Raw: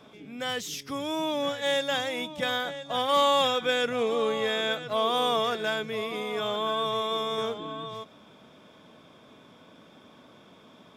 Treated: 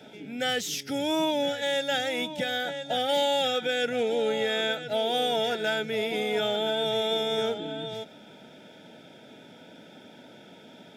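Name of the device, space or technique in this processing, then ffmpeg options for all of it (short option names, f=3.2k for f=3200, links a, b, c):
PA system with an anti-feedback notch: -af "highpass=120,asuperstop=centerf=1100:order=20:qfactor=3.5,alimiter=limit=-22dB:level=0:latency=1:release=484,volume=4.5dB"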